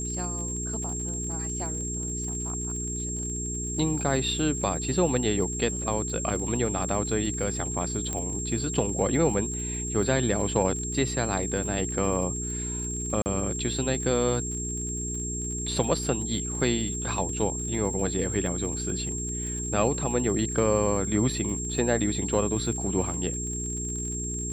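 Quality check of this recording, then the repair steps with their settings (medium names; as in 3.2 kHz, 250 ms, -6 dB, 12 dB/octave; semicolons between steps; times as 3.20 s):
crackle 42 per s -35 dBFS
hum 60 Hz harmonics 7 -34 dBFS
whine 7.5 kHz -32 dBFS
8.13 s: pop -17 dBFS
13.22–13.26 s: dropout 39 ms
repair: de-click; de-hum 60 Hz, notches 7; band-stop 7.5 kHz, Q 30; interpolate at 13.22 s, 39 ms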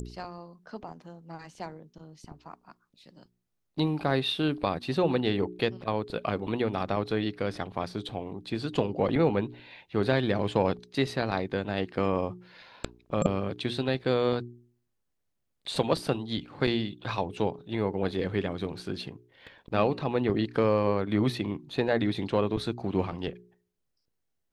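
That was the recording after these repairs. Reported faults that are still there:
whine 7.5 kHz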